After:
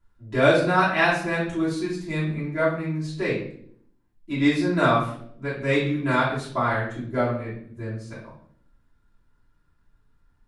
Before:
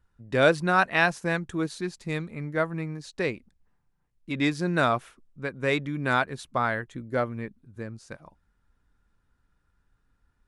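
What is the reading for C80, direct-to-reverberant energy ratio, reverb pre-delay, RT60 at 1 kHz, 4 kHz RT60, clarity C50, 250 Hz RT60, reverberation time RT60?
8.5 dB, -10.0 dB, 3 ms, 0.55 s, 0.50 s, 3.5 dB, 0.90 s, 0.65 s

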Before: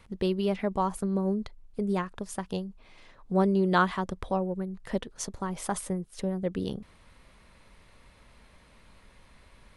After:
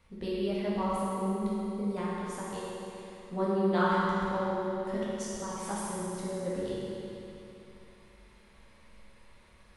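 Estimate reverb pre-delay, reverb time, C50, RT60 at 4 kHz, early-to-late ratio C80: 9 ms, 3.0 s, -4.0 dB, 2.9 s, -2.0 dB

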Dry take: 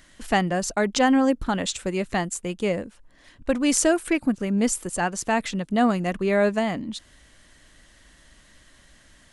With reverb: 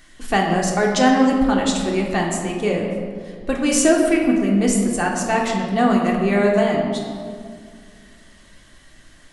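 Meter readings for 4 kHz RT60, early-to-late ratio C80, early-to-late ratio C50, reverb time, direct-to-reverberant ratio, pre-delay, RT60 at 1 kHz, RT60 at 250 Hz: 1.1 s, 4.5 dB, 3.0 dB, 2.1 s, -1.5 dB, 3 ms, 1.9 s, 2.6 s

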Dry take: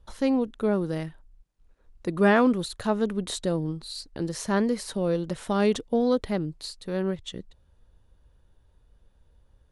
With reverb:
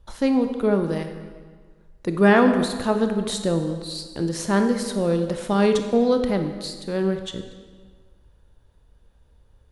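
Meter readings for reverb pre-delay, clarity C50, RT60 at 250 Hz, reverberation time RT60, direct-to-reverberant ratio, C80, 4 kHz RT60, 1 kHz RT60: 22 ms, 7.5 dB, 1.5 s, 1.6 s, 6.5 dB, 9.0 dB, 1.3 s, 1.6 s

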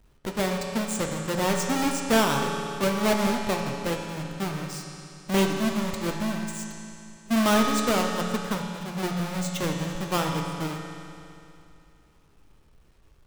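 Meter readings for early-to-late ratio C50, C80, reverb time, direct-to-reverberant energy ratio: 2.5 dB, 3.5 dB, 2.7 s, 1.0 dB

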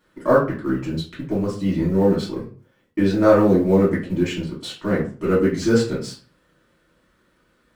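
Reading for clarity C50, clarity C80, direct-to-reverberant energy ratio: 7.0 dB, 12.5 dB, -8.5 dB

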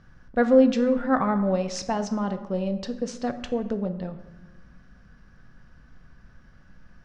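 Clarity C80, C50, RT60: 14.0 dB, 11.5 dB, 1.1 s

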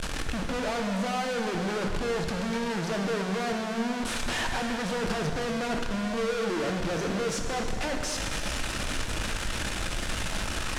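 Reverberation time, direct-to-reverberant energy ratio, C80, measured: 2.6 s, 2.5 dB, 5.5 dB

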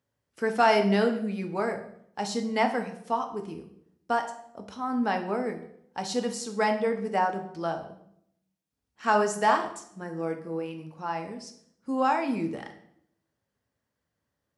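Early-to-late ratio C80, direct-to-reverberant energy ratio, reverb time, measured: 13.5 dB, 4.5 dB, 0.70 s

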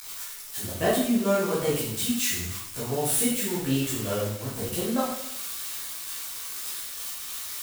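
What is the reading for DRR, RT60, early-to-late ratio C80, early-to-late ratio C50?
-10.0 dB, 0.80 s, 5.0 dB, 2.0 dB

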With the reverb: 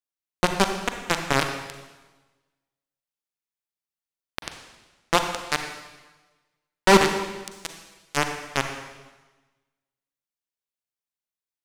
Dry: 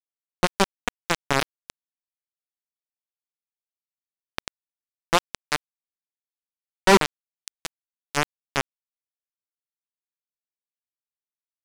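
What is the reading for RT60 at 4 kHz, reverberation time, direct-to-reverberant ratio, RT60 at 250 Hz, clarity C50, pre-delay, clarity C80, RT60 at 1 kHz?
1.2 s, 1.2 s, 5.5 dB, 1.3 s, 6.5 dB, 37 ms, 8.0 dB, 1.2 s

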